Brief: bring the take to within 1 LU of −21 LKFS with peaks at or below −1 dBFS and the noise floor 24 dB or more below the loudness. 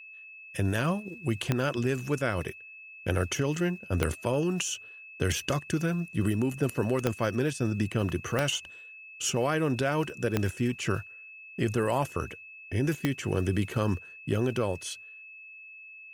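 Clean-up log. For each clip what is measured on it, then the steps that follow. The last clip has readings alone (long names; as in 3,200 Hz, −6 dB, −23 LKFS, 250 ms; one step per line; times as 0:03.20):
number of clicks 6; interfering tone 2,600 Hz; level of the tone −45 dBFS; integrated loudness −30.0 LKFS; sample peak −11.0 dBFS; target loudness −21.0 LKFS
→ click removal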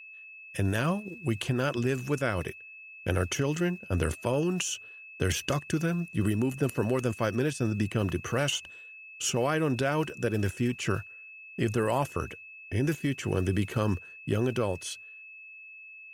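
number of clicks 1; interfering tone 2,600 Hz; level of the tone −45 dBFS
→ notch filter 2,600 Hz, Q 30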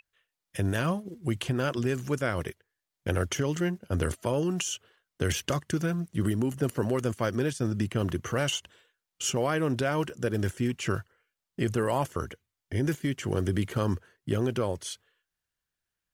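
interfering tone none found; integrated loudness −30.0 LKFS; sample peak −12.5 dBFS; target loudness −21.0 LKFS
→ level +9 dB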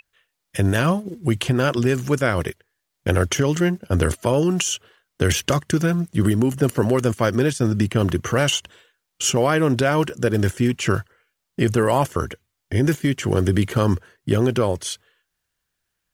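integrated loudness −21.0 LKFS; sample peak −3.5 dBFS; background noise floor −78 dBFS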